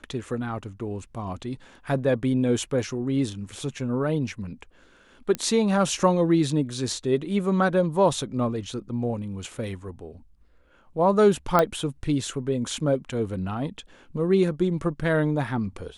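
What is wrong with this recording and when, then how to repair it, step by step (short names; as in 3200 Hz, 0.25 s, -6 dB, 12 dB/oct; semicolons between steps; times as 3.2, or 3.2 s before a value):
5.35 pop -13 dBFS
11.59 pop -7 dBFS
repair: de-click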